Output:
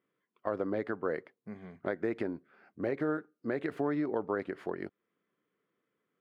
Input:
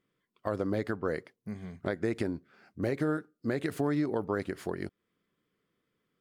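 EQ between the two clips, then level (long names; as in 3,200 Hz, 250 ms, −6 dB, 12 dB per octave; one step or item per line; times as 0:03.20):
high-pass filter 120 Hz
bass and treble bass −7 dB, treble −15 dB
high-shelf EQ 4,300 Hz −6.5 dB
0.0 dB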